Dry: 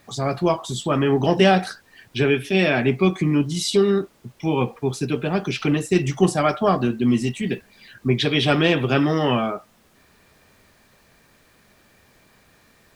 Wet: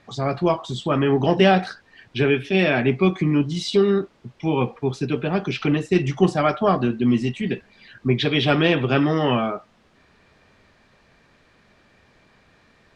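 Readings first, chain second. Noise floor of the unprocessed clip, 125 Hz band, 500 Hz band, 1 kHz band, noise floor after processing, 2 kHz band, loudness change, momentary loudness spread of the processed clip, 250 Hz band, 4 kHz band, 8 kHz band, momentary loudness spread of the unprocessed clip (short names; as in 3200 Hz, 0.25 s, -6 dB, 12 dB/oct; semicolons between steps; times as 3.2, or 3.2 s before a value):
-57 dBFS, 0.0 dB, 0.0 dB, 0.0 dB, -58 dBFS, 0.0 dB, 0.0 dB, 9 LU, 0.0 dB, -1.5 dB, n/a, 9 LU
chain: LPF 4400 Hz 12 dB/oct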